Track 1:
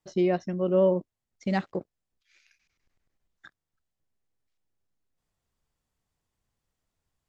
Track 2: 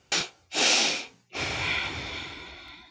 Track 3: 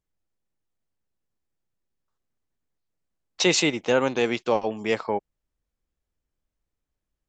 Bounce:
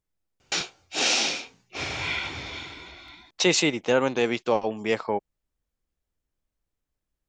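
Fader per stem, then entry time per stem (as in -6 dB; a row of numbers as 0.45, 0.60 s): off, -1.0 dB, -0.5 dB; off, 0.40 s, 0.00 s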